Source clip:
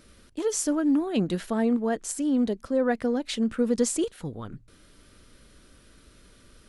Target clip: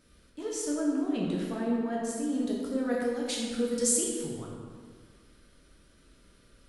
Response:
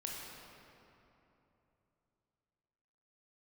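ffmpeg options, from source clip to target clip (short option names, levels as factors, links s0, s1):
-filter_complex "[0:a]asettb=1/sr,asplit=3[s0][s1][s2];[s0]atrim=end=2.324[s3];[s1]atrim=start=2.32:end=4.34,asetpts=PTS-STARTPTS,afade=t=in:d=0.004:c=qsin,afade=t=out:st=2.016:d=0.004:c=qsin,aemphasis=mode=production:type=75fm[s4];[s2]atrim=start=4.336[s5];[s3][s4]acrossfade=d=0.004:c1=hsin:c2=qsin[s6];[s6][s5]acrossfade=d=0.004:c1=qsin:c2=hsin[s7];[1:a]atrim=start_sample=2205,asetrate=83790,aresample=44100[s8];[s7][s8]afir=irnorm=-1:irlink=0"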